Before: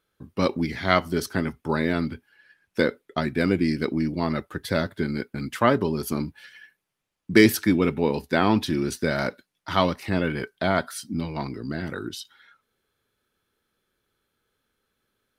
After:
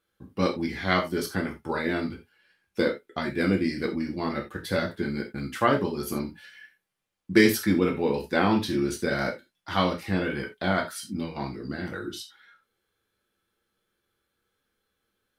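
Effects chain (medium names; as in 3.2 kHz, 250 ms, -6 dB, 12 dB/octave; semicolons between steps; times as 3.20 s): 2.07–2.85 s: peaking EQ 1.7 kHz -8.5 dB 0.26 oct; gated-style reverb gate 110 ms falling, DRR 0.5 dB; trim -4.5 dB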